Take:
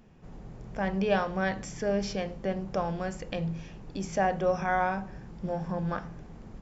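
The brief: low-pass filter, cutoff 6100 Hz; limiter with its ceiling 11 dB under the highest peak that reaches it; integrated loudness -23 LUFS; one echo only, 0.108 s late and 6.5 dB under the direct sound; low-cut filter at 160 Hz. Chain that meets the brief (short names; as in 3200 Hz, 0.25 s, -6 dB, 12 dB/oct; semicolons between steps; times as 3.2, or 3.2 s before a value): HPF 160 Hz; LPF 6100 Hz; limiter -24 dBFS; echo 0.108 s -6.5 dB; gain +12 dB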